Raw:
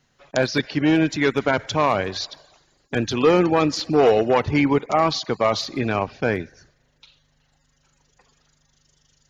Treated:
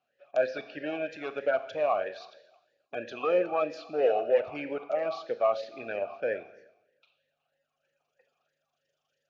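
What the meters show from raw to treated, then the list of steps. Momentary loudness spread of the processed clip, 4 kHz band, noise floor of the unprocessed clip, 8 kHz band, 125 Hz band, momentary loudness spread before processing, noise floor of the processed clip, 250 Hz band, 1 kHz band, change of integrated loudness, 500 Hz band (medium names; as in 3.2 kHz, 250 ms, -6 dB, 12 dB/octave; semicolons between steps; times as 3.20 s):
11 LU, -19.5 dB, -66 dBFS, no reading, under -25 dB, 10 LU, -82 dBFS, -20.0 dB, -11.0 dB, -9.5 dB, -7.0 dB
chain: Schroeder reverb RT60 0.93 s, combs from 27 ms, DRR 11 dB; talking filter a-e 3.1 Hz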